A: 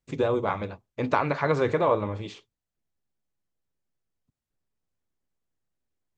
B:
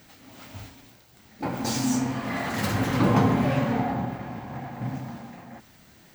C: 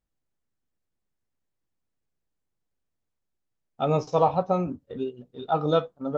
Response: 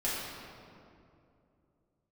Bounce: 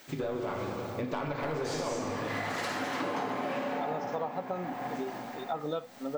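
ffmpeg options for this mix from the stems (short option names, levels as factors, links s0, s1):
-filter_complex "[0:a]asoftclip=type=tanh:threshold=0.112,volume=0.562,asplit=3[s0][s1][s2];[s1]volume=0.562[s3];[1:a]highpass=420,acrossover=split=9000[s4][s5];[s5]acompressor=threshold=0.002:ratio=4:attack=1:release=60[s6];[s4][s6]amix=inputs=2:normalize=0,volume=0.841,asplit=2[s7][s8];[s8]volume=0.531[s9];[2:a]highpass=200,volume=0.668[s10];[s2]apad=whole_len=271109[s11];[s7][s11]sidechaincompress=threshold=0.0178:ratio=8:attack=16:release=163[s12];[3:a]atrim=start_sample=2205[s13];[s3][s9]amix=inputs=2:normalize=0[s14];[s14][s13]afir=irnorm=-1:irlink=0[s15];[s0][s12][s10][s15]amix=inputs=4:normalize=0,acompressor=threshold=0.0282:ratio=5"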